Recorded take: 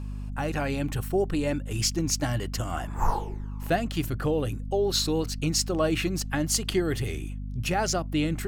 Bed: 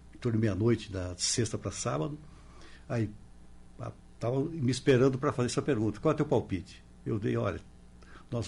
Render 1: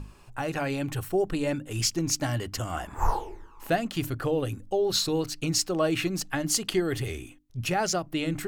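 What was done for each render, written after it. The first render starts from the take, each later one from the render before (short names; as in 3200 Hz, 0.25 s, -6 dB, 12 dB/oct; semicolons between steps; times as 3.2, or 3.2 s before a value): notches 50/100/150/200/250/300 Hz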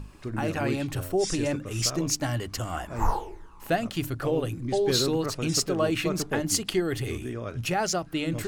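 add bed -4 dB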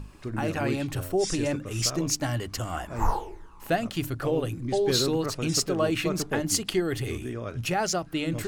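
nothing audible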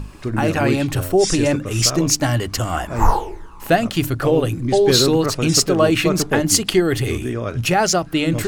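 gain +10 dB; limiter -3 dBFS, peak gain reduction 0.5 dB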